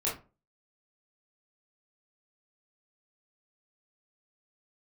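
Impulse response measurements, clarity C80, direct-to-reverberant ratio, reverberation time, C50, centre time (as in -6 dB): 15.0 dB, -6.5 dB, 0.30 s, 7.0 dB, 33 ms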